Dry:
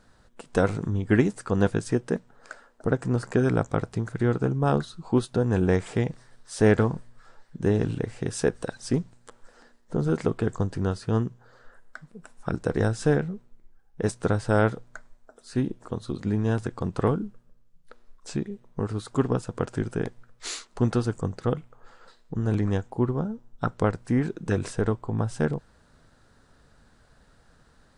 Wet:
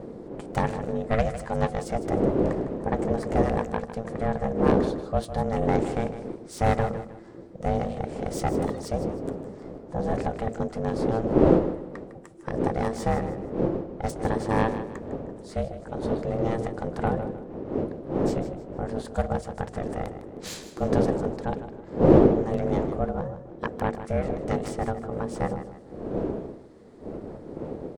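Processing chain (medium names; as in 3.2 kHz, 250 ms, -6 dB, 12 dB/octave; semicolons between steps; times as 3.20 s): self-modulated delay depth 0.15 ms; wind noise 180 Hz -26 dBFS; ring modulator 340 Hz; de-hum 56.81 Hz, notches 13; on a send: feedback delay 155 ms, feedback 34%, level -12 dB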